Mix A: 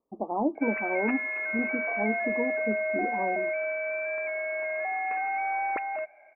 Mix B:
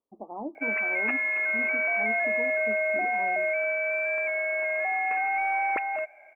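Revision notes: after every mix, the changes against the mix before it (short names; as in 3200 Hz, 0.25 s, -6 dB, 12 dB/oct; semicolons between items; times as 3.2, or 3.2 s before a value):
speech -10.0 dB; master: remove air absorption 460 m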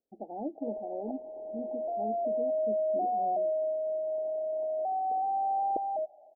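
speech: remove steep low-pass 1200 Hz 96 dB/oct; master: add steep low-pass 820 Hz 96 dB/oct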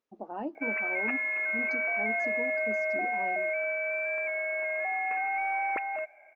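background -3.5 dB; master: remove steep low-pass 820 Hz 96 dB/oct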